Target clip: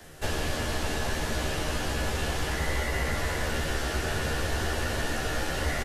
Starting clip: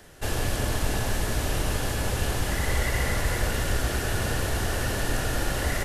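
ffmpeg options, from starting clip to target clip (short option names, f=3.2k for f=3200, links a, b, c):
-filter_complex "[0:a]acrossover=split=190|1400|6900[a][b][c][d];[a]acompressor=threshold=-31dB:ratio=4[e];[b]acompressor=threshold=-34dB:ratio=4[f];[c]acompressor=threshold=-36dB:ratio=4[g];[d]acompressor=threshold=-51dB:ratio=4[h];[e][f][g][h]amix=inputs=4:normalize=0,asplit=2[i][j];[j]adelay=13,volume=-2dB[k];[i][k]amix=inputs=2:normalize=0"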